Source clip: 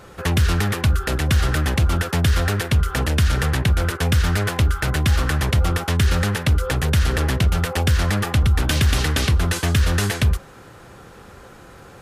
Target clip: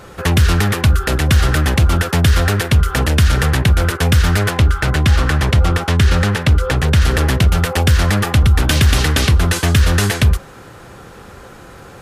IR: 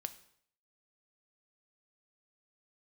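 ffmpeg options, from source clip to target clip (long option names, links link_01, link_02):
-filter_complex "[0:a]asettb=1/sr,asplit=3[link_01][link_02][link_03];[link_01]atrim=end=4.504[link_04];[link_02]atrim=start=4.5:end=7.02,asetpts=PTS-STARTPTS,afade=type=in:duration=0.004:curve=qsin,afade=type=out:start_time=2.516:duration=0.004:curve=qsin,highshelf=frequency=9800:gain=-11[link_05];[link_03]atrim=start=7.016[link_06];[link_04][link_05]acrossfade=duration=0.004:curve1=hsin:curve2=qsin[link_07];[link_07][link_06]acrossfade=duration=0.004:curve1=qsin:curve2=hsin,volume=5.5dB"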